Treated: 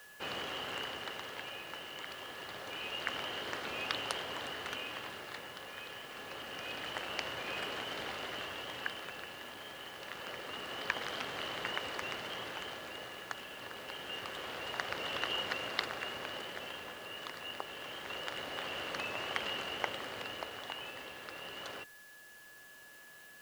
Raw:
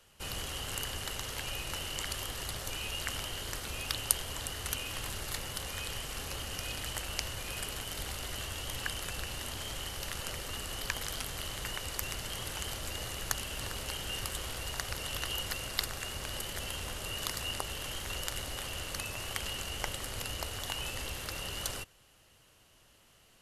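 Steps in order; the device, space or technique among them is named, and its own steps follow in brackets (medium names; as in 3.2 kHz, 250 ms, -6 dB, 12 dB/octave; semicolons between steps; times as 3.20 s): shortwave radio (band-pass 260–2700 Hz; tremolo 0.26 Hz, depth 59%; whistle 1.7 kHz -59 dBFS; white noise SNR 19 dB); trim +4.5 dB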